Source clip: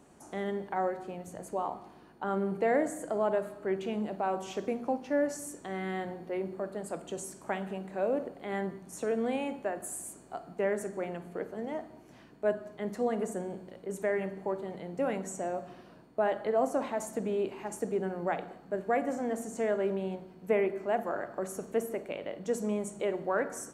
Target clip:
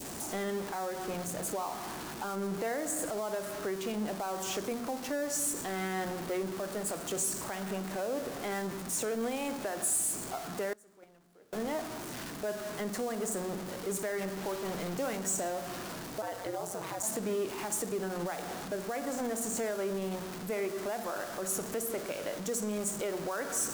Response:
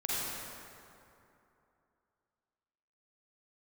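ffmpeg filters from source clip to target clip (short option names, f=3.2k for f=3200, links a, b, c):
-filter_complex "[0:a]aeval=exprs='val(0)+0.5*0.0119*sgn(val(0))':c=same,asettb=1/sr,asplit=3[a][b][c];[a]atrim=end=10.734[d];[b]atrim=start=10.73:end=11.53,asetpts=PTS-STARTPTS,afade=t=in:d=0.004:c=qsin,afade=t=out:st=0.796:d=0.004:c=qsin,agate=range=-26dB:threshold=-27dB:ratio=16:detection=peak[e];[c]atrim=start=11.526[f];[d][e]acrossfade=d=0.004:c1=hsin:c2=qsin[g];[g][f]acrossfade=d=0.004:c1=qsin:c2=hsin,adynamicequalizer=threshold=0.00501:dfrequency=1300:dqfactor=1.3:tfrequency=1300:tqfactor=1.3:attack=5:release=100:ratio=0.375:range=2.5:mode=boostabove:tftype=bell,acrossover=split=4500[h][i];[h]alimiter=level_in=2.5dB:limit=-24dB:level=0:latency=1:release=197,volume=-2.5dB[j];[i]acontrast=88[k];[j][k]amix=inputs=2:normalize=0,asettb=1/sr,asplit=3[l][m][n];[l]atrim=end=14.384[o];[m]atrim=start=14.38:end=15.17,asetpts=PTS-STARTPTS,afade=t=in:d=0.004:c=qsin,afade=t=out:st=0.786:d=0.004:c=qsin,acrusher=bits=8:dc=4:mix=0:aa=0.000001[p];[n]atrim=start=15.166[q];[o][p]acrossfade=d=0.004:c1=hsin:c2=qsin[r];[r][q]acrossfade=d=0.004:c1=qsin:c2=hsin,asplit=3[s][t][u];[s]afade=t=out:st=16.21:d=0.02[v];[t]aeval=exprs='val(0)*sin(2*PI*92*n/s)':c=same,afade=t=in:st=16.21:d=0.02,afade=t=out:st=17.02:d=0.02[w];[u]afade=t=in:st=17.02:d=0.02[x];[v][w][x]amix=inputs=3:normalize=0"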